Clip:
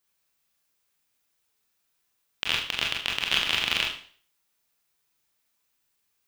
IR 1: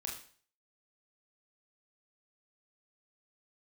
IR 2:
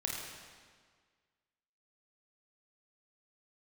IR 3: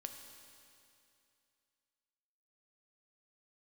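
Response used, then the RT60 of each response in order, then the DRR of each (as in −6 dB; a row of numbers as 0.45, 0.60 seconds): 1; 0.45, 1.7, 2.6 seconds; −1.0, −2.5, 4.5 decibels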